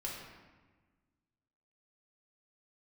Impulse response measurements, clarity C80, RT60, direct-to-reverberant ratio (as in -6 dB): 3.5 dB, 1.3 s, -4.5 dB